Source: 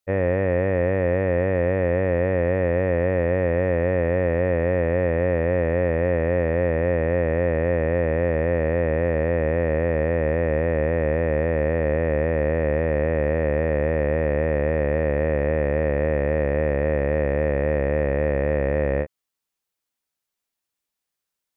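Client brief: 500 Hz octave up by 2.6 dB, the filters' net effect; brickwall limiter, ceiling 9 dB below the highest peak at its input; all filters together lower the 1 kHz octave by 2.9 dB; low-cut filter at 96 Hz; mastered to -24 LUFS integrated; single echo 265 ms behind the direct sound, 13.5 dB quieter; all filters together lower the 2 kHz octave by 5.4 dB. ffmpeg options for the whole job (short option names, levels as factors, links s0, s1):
-af "highpass=96,equalizer=f=500:t=o:g=4.5,equalizer=f=1000:t=o:g=-6.5,equalizer=f=2000:t=o:g=-4.5,alimiter=limit=0.112:level=0:latency=1,aecho=1:1:265:0.211,volume=1.58"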